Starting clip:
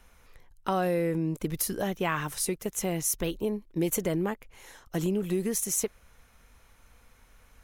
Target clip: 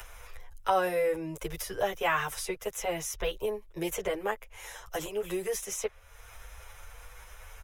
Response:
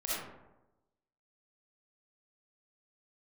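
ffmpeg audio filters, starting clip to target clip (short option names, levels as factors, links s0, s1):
-filter_complex "[0:a]acrossover=split=110|4800[s0][s1][s2];[s1]highpass=f=450:w=0.5412,highpass=f=450:w=1.3066[s3];[s2]acompressor=threshold=0.00708:ratio=6[s4];[s0][s3][s4]amix=inputs=3:normalize=0,bandreject=f=4300:w=7.1,acompressor=mode=upward:threshold=0.01:ratio=2.5,asplit=2[s5][s6];[s6]adelay=8.6,afreqshift=1.3[s7];[s5][s7]amix=inputs=2:normalize=1,volume=2"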